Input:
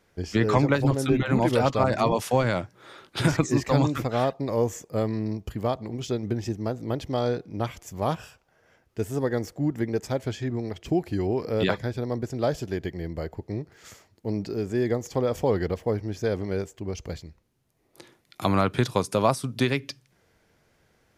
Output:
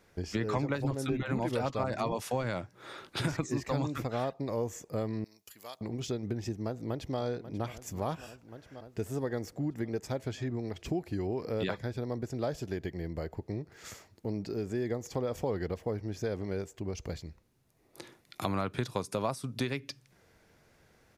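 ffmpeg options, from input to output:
-filter_complex "[0:a]asettb=1/sr,asplit=3[s0][s1][s2];[s0]atrim=end=5.244[s3];[s1]atrim=start=5.24:end=5.81,asetpts=PTS-STARTPTS,afade=t=in:d=0.004:c=qsin,afade=t=out:st=0.566:d=0.004:c=qsin,aderivative[s4];[s2]atrim=start=5.806[s5];[s3][s4]acrossfade=d=0.004:c1=hsin:c2=qsin[s6];[s6][s5]acrossfade=d=0.004:c1=qsin:c2=hsin,asplit=2[s7][s8];[s8]afade=t=in:st=6.64:d=0.01,afade=t=out:st=7.18:d=0.01,aecho=0:1:540|1080|1620|2160|2700|3240|3780|4320|4860|5400:0.158489|0.118867|0.0891502|0.0668627|0.050147|0.0376103|0.0282077|0.0211558|0.0158668|0.0119001[s9];[s7][s9]amix=inputs=2:normalize=0,bandreject=f=3100:w=24,acompressor=threshold=0.0126:ratio=2,volume=1.12"

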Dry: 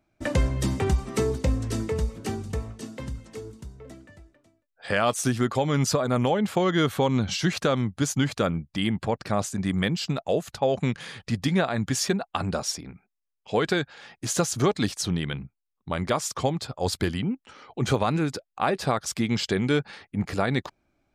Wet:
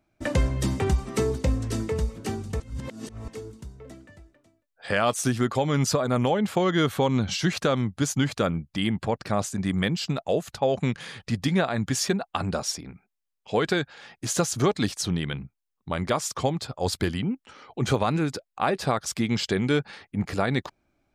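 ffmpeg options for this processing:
-filter_complex "[0:a]asplit=3[s0][s1][s2];[s0]atrim=end=2.602[s3];[s1]atrim=start=2.598:end=3.282,asetpts=PTS-STARTPTS,areverse[s4];[s2]atrim=start=3.278[s5];[s3][s4]acrossfade=d=0.004:c1=hsin:c2=hsin[s6];[s6][s5]acrossfade=d=0.004:c1=hsin:c2=hsin"

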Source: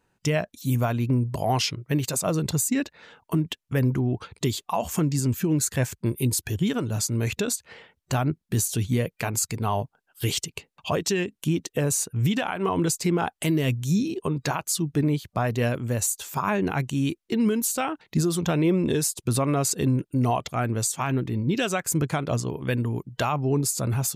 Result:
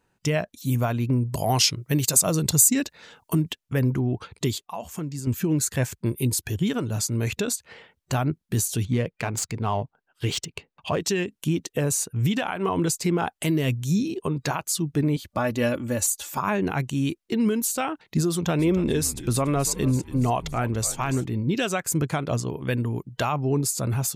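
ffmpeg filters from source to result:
-filter_complex "[0:a]asettb=1/sr,asplit=3[s0][s1][s2];[s0]atrim=end=1.334[s3];[s1]atrim=start=1.33:end=3.52,asetpts=PTS-STARTPTS,afade=t=in:d=0.004:c=qsin,afade=t=out:st=2.186:d=0.004:c=qsin,bass=f=250:g=2,treble=f=4000:g=10[s4];[s2]atrim=start=3.516[s5];[s3][s4]acrossfade=d=0.004:c1=hsin:c2=qsin[s6];[s6][s5]acrossfade=d=0.004:c1=qsin:c2=hsin,asettb=1/sr,asplit=3[s7][s8][s9];[s7]atrim=end=8.854[s10];[s8]atrim=start=8.85:end=11,asetpts=PTS-STARTPTS,afade=t=in:d=0.004:c=qsin,afade=t=out:st=2.146:d=0.004:c=qsin,adynamicsmooth=sensitivity=4.5:basefreq=3700[s11];[s9]atrim=start=10.996[s12];[s10][s11]acrossfade=d=0.004:c1=hsin:c2=qsin[s13];[s13][s12]acrossfade=d=0.004:c1=qsin:c2=hsin,asettb=1/sr,asplit=3[s14][s15][s16];[s14]atrim=end=15.164[s17];[s15]atrim=start=15.16:end=16.38,asetpts=PTS-STARTPTS,afade=t=in:d=0.004:c=qsin,afade=t=out:st=1.216:d=0.004:c=qsin,aecho=1:1:3.5:0.65,atrim=end_sample=53802[s18];[s16]atrim=start=16.376[s19];[s17][s18]acrossfade=d=0.004:c1=hsin:c2=qsin[s20];[s20][s19]acrossfade=d=0.004:c1=qsin:c2=hsin,asettb=1/sr,asplit=3[s21][s22][s23];[s21]atrim=end=18.304[s24];[s22]atrim=start=18.3:end=21.25,asetpts=PTS-STARTPTS,afade=t=in:d=0.004:c=qsin,afade=t=out:st=2.946:d=0.004:c=qsin,asplit=5[s25][s26][s27][s28][s29];[s26]adelay=285,afreqshift=-100,volume=0.188[s30];[s27]adelay=570,afreqshift=-200,volume=0.0794[s31];[s28]adelay=855,afreqshift=-300,volume=0.0331[s32];[s29]adelay=1140,afreqshift=-400,volume=0.014[s33];[s25][s30][s31][s32][s33]amix=inputs=5:normalize=0,atrim=end_sample=130095[s34];[s23]atrim=start=21.246[s35];[s24][s34]acrossfade=d=0.004:c1=hsin:c2=qsin[s36];[s36][s35]acrossfade=d=0.004:c1=qsin:c2=hsin,asplit=3[s37][s38][s39];[s37]atrim=end=4.582[s40];[s38]atrim=start=4.578:end=5.272,asetpts=PTS-STARTPTS,volume=0.398[s41];[s39]atrim=start=5.268[s42];[s40][s41]acrossfade=d=0.004:c1=hsin:c2=hsin[s43];[s43][s42]acrossfade=d=0.004:c1=hsin:c2=hsin"

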